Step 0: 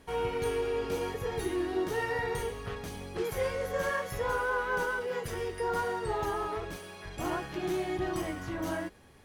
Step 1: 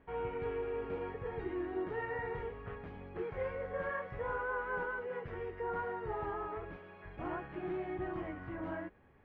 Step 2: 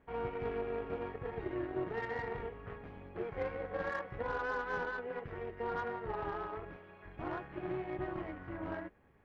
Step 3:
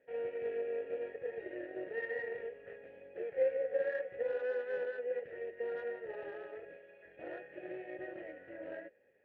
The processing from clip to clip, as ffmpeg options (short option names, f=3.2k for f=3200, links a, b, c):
-af "lowpass=f=2.3k:w=0.5412,lowpass=f=2.3k:w=1.3066,volume=-6.5dB"
-af "aeval=exprs='0.0501*(cos(1*acos(clip(val(0)/0.0501,-1,1)))-cos(1*PI/2))+0.002*(cos(7*acos(clip(val(0)/0.0501,-1,1)))-cos(7*PI/2))':c=same,tremolo=f=240:d=0.571,volume=3dB"
-filter_complex "[0:a]asplit=3[a][b][c];[a]bandpass=f=530:t=q:w=8,volume=0dB[d];[b]bandpass=f=1.84k:t=q:w=8,volume=-6dB[e];[c]bandpass=f=2.48k:t=q:w=8,volume=-9dB[f];[d][e][f]amix=inputs=3:normalize=0,volume=8.5dB"